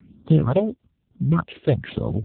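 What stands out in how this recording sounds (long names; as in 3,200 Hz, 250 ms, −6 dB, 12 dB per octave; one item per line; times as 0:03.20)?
a buzz of ramps at a fixed pitch in blocks of 8 samples
tremolo saw down 1.8 Hz, depth 55%
phaser sweep stages 4, 1.1 Hz, lowest notch 150–2,300 Hz
AMR narrowband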